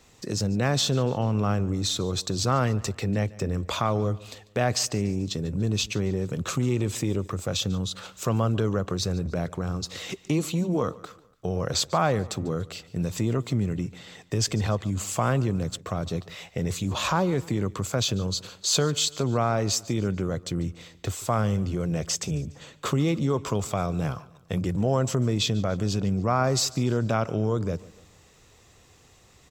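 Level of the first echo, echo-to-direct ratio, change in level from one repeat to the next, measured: -21.0 dB, -20.0 dB, -6.5 dB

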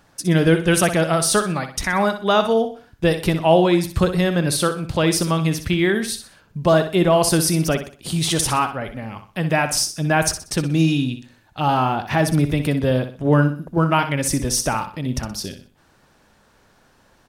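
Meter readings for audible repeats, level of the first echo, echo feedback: 3, -10.0 dB, 35%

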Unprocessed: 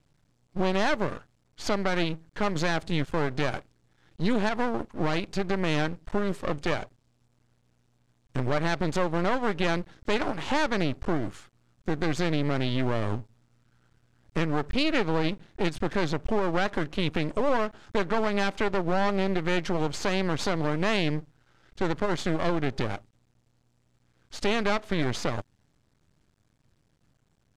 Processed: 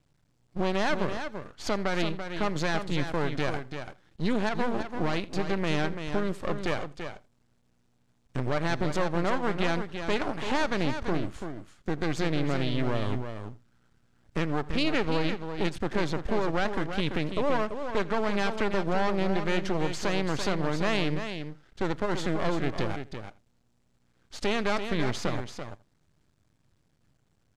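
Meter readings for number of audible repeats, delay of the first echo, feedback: 3, 83 ms, no regular repeats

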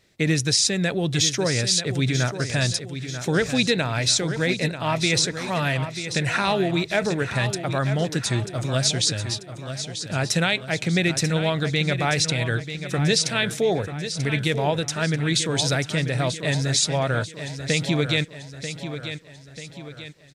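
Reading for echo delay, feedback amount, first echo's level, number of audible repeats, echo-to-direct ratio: 939 ms, 47%, -10.0 dB, 4, -9.0 dB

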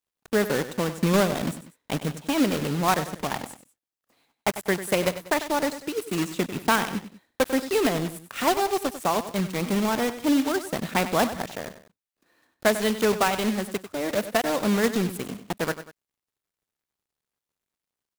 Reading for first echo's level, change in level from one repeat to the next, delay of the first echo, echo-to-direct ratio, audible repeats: -12.5 dB, -7.5 dB, 96 ms, -12.0 dB, 2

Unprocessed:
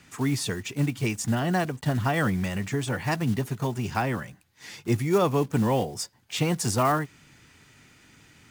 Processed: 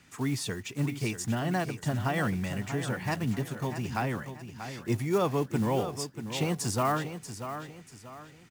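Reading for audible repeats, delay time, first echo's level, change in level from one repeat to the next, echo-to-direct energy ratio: 3, 637 ms, -10.0 dB, -9.0 dB, -9.5 dB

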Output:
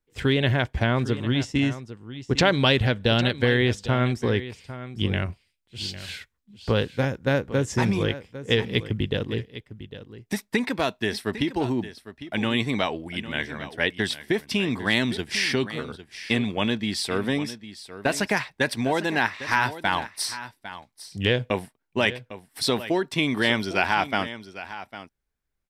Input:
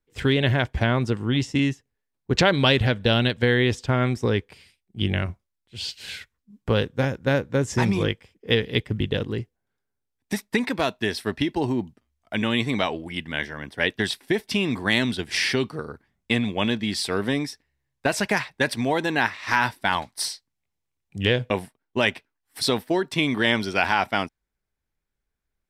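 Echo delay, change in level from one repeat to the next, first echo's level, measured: 803 ms, no regular repeats, -14.0 dB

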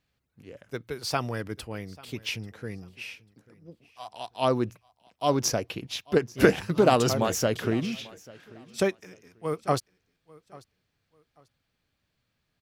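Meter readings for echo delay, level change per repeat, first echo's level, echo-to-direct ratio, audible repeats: 841 ms, -12.0 dB, -22.5 dB, -22.0 dB, 2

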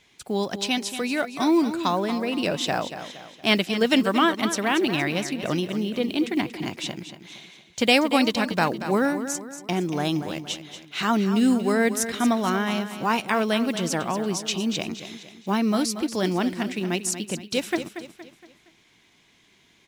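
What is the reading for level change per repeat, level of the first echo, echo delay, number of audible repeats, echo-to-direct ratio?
-7.5 dB, -11.0 dB, 233 ms, 4, -10.0 dB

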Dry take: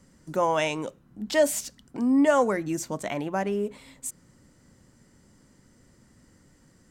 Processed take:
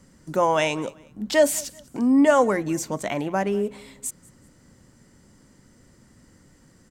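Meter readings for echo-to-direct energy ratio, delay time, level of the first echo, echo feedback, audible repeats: -23.0 dB, 191 ms, -23.5 dB, 34%, 2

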